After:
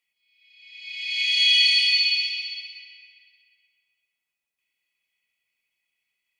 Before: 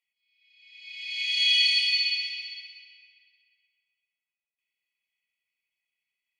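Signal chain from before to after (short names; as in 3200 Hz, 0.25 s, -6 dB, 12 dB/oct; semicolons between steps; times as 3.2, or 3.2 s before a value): 1.99–2.75 steep high-pass 2100 Hz 48 dB/oct; in parallel at -3 dB: limiter -20.5 dBFS, peak gain reduction 9 dB; on the sum: gain +1.5 dB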